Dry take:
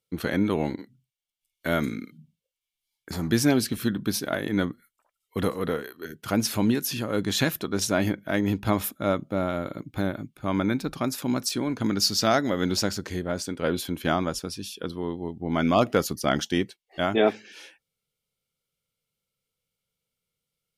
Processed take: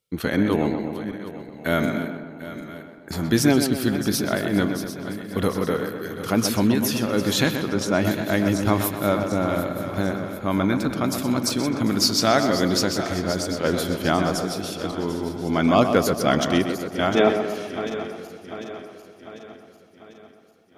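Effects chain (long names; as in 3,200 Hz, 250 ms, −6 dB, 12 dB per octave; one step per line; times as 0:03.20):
feedback delay that plays each chunk backwards 373 ms, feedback 71%, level −12 dB
0:07.51–0:08.05: high-shelf EQ 5,300 Hz −12 dB
tape delay 127 ms, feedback 64%, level −6 dB, low-pass 2,300 Hz
level +3 dB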